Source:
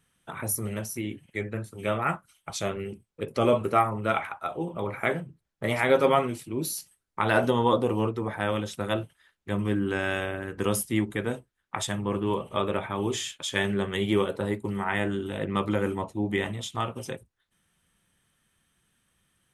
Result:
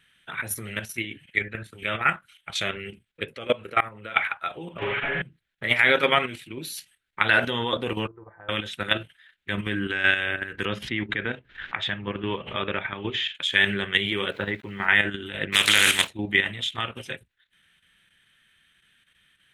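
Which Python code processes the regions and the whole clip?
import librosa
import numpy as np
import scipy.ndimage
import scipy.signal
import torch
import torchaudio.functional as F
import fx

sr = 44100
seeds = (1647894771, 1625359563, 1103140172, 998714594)

y = fx.chain(x, sr, fx.level_steps(step_db=19),
    fx.small_body(hz=(500.0,), ring_ms=30, db=7), at=(3.33, 4.16))
y = fx.chain(y, sr, fx.delta_mod(bps=16000, step_db=-37.0),
    fx.comb(ms=7.1, depth=0.75),
    fx.room_flutter(wall_m=7.6, rt60_s=0.59), at=(4.78, 5.22))
y = fx.chain(y, sr, fx.lowpass(hz=1100.0, slope=24),
    fx.peak_eq(hz=230.0, db=-14.5, octaves=0.53),
    fx.comb_fb(f0_hz=170.0, decay_s=0.88, harmonics='all', damping=0.0, mix_pct=80), at=(8.07, 8.49))
y = fx.chain(y, sr, fx.air_absorb(metres=230.0),
    fx.pre_swell(db_per_s=110.0), at=(10.65, 13.35))
y = fx.chain(y, sr, fx.lowpass(hz=3200.0, slope=12),
    fx.sample_gate(floor_db=-50.0), at=(14.32, 14.86))
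y = fx.spec_flatten(y, sr, power=0.43, at=(15.52, 16.08), fade=0.02)
y = fx.peak_eq(y, sr, hz=7900.0, db=14.0, octaves=2.0, at=(15.52, 16.08), fade=0.02)
y = fx.band_shelf(y, sr, hz=2400.0, db=14.5, octaves=1.7)
y = fx.level_steps(y, sr, step_db=9)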